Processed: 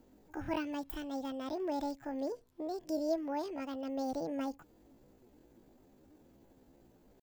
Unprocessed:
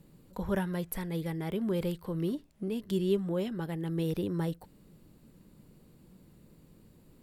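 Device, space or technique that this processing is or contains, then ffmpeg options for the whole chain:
chipmunk voice: -af "asetrate=72056,aresample=44100,atempo=0.612027,volume=-5dB"

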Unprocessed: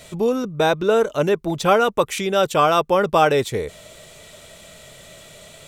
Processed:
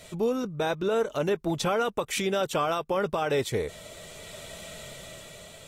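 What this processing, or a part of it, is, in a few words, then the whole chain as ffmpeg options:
low-bitrate web radio: -af "dynaudnorm=f=250:g=9:m=13dB,alimiter=limit=-12.5dB:level=0:latency=1:release=162,volume=-5.5dB" -ar 48000 -c:a aac -b:a 48k

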